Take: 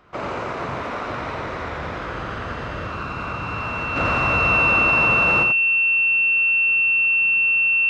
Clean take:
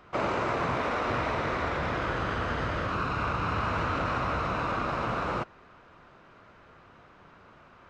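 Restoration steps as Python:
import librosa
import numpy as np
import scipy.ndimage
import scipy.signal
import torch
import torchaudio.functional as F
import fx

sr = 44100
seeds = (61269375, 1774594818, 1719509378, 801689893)

y = fx.notch(x, sr, hz=2700.0, q=30.0)
y = fx.fix_echo_inverse(y, sr, delay_ms=86, level_db=-5.5)
y = fx.fix_level(y, sr, at_s=3.96, step_db=-6.5)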